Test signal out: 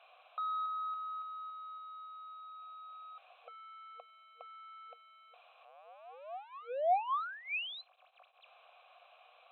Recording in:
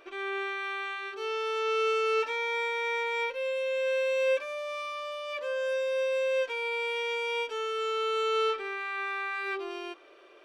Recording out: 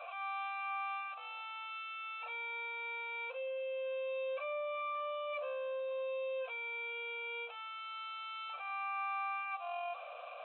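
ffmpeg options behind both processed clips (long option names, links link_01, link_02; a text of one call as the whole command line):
ffmpeg -i in.wav -filter_complex "[0:a]aeval=exprs='val(0)+0.5*0.0141*sgn(val(0))':channel_layout=same,asplit=2[link_01][link_02];[link_02]acrusher=bits=5:mode=log:mix=0:aa=0.000001,volume=-11dB[link_03];[link_01][link_03]amix=inputs=2:normalize=0,asoftclip=type=tanh:threshold=-25.5dB,asplit=3[link_04][link_05][link_06];[link_04]bandpass=frequency=730:width_type=q:width=8,volume=0dB[link_07];[link_05]bandpass=frequency=1090:width_type=q:width=8,volume=-6dB[link_08];[link_06]bandpass=frequency=2440:width_type=q:width=8,volume=-9dB[link_09];[link_07][link_08][link_09]amix=inputs=3:normalize=0,afftfilt=real='re*between(b*sr/4096,470,4100)':imag='im*between(b*sr/4096,470,4100)':win_size=4096:overlap=0.75,volume=3dB" out.wav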